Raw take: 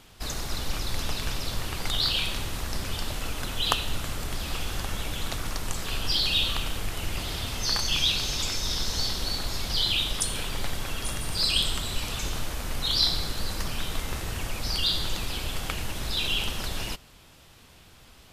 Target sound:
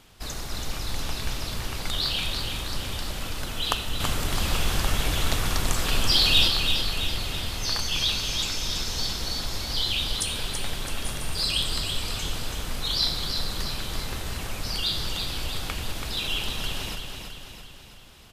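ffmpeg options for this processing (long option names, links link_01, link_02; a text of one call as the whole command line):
ffmpeg -i in.wav -filter_complex "[0:a]asettb=1/sr,asplit=3[link_01][link_02][link_03];[link_01]atrim=end=4.004[link_04];[link_02]atrim=start=4:end=6.48,asetpts=PTS-STARTPTS,afade=type=in:duration=0.004:curve=qsin,afade=type=out:start_time=2.476:duration=0.004:curve=qsin,acontrast=73[link_05];[link_03]atrim=start=6.476[link_06];[link_04][link_05]acrossfade=duration=0.004:curve1=hsin:curve2=qsin[link_07];[link_07][link_06]acrossfade=duration=0.004:curve1=qsin:curve2=hsin,aecho=1:1:331|662|993|1324|1655|1986|2317:0.501|0.271|0.146|0.0789|0.0426|0.023|0.0124,volume=-1.5dB" out.wav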